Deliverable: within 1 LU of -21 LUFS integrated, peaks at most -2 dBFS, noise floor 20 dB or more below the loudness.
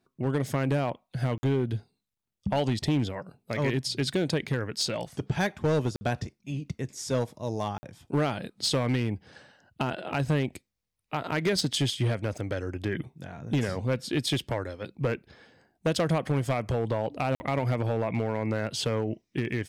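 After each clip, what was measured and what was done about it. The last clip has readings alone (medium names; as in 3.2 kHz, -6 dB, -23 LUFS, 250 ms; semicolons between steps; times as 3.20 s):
clipped samples 1.6%; clipping level -19.5 dBFS; dropouts 4; longest dropout 50 ms; loudness -29.5 LUFS; peak level -19.5 dBFS; loudness target -21.0 LUFS
-> clip repair -19.5 dBFS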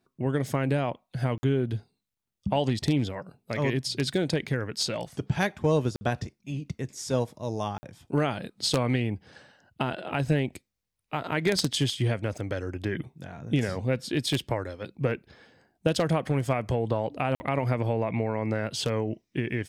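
clipped samples 0.0%; dropouts 4; longest dropout 50 ms
-> interpolate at 1.38/5.96/7.78/17.35 s, 50 ms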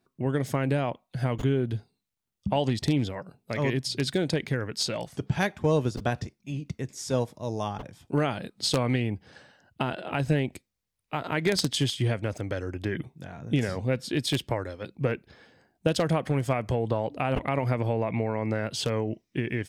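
dropouts 0; loudness -29.0 LUFS; peak level -10.5 dBFS; loudness target -21.0 LUFS
-> trim +8 dB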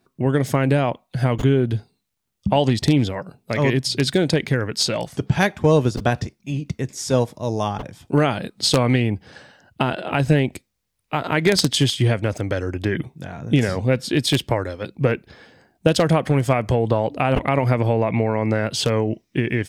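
loudness -21.0 LUFS; peak level -2.5 dBFS; noise floor -73 dBFS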